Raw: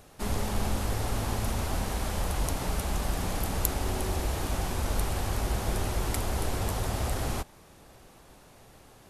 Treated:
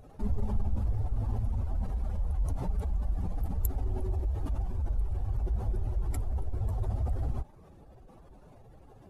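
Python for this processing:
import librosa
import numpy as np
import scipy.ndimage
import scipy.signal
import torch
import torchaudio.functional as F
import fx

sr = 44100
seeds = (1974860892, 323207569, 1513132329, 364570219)

y = fx.spec_expand(x, sr, power=2.0)
y = fx.rider(y, sr, range_db=10, speed_s=2.0)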